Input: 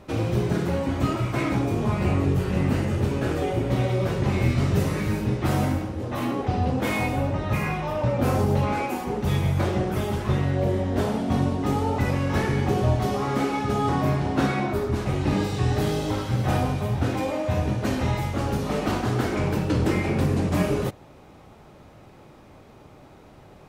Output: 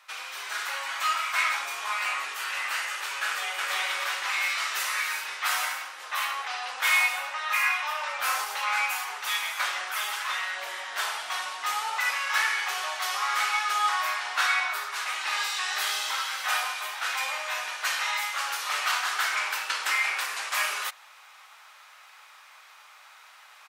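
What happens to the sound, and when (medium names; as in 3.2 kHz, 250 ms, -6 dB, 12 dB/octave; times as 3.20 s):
3.26–3.71 s: echo throw 320 ms, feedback 50%, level -1.5 dB
whole clip: high-pass 1.2 kHz 24 dB/octave; level rider gain up to 6 dB; trim +2.5 dB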